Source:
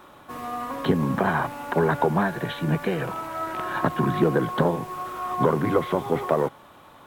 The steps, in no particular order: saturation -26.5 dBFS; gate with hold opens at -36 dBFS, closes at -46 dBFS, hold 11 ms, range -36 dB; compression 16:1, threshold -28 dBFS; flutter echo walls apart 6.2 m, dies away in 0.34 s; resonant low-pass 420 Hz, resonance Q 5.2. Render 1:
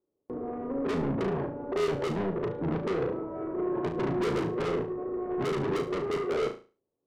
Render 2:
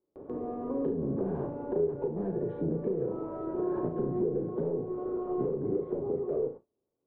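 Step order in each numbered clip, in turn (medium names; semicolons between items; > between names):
resonant low-pass > saturation > compression > gate with hold > flutter echo; saturation > resonant low-pass > compression > flutter echo > gate with hold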